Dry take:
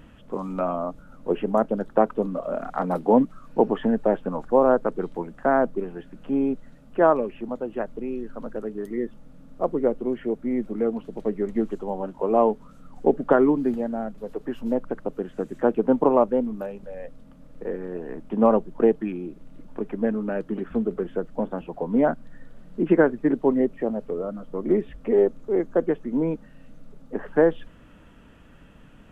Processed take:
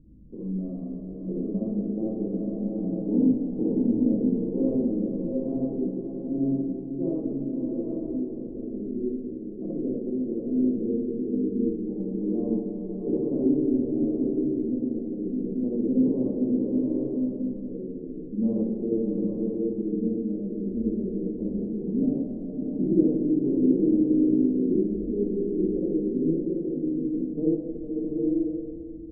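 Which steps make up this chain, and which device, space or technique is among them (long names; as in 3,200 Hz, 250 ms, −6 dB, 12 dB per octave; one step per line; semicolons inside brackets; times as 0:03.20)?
next room (low-pass filter 330 Hz 24 dB per octave; convolution reverb RT60 1.0 s, pre-delay 46 ms, DRR −4.5 dB)
0:03.02–0:03.72: Butterworth low-pass 2,000 Hz
bucket-brigade delay 223 ms, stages 4,096, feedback 67%, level −15 dB
slow-attack reverb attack 860 ms, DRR 1.5 dB
level −6 dB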